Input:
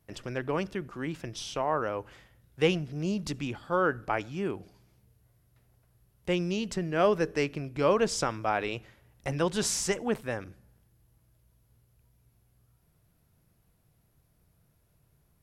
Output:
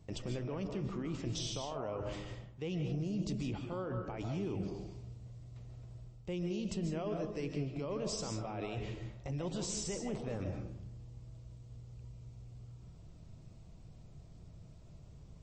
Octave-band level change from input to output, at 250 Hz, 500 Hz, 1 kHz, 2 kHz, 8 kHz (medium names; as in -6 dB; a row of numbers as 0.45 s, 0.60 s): -5.5 dB, -11.0 dB, -14.5 dB, -16.5 dB, -8.0 dB